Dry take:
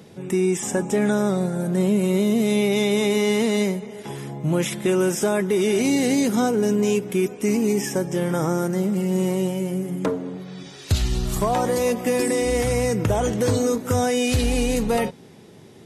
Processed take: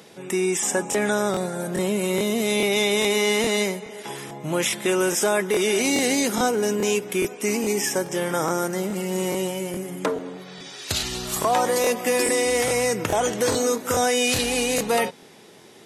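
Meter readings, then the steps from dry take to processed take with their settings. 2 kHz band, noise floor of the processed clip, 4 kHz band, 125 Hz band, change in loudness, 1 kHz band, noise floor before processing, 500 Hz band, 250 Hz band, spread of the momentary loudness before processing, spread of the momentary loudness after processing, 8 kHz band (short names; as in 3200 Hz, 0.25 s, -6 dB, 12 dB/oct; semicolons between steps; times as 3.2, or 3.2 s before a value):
+4.5 dB, -47 dBFS, +5.0 dB, -8.5 dB, -1.0 dB, +2.5 dB, -45 dBFS, -1.0 dB, -5.5 dB, 6 LU, 8 LU, +5.0 dB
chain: HPF 740 Hz 6 dB/oct; crackling interface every 0.42 s, samples 1024, repeat, from 0.9; gain +5 dB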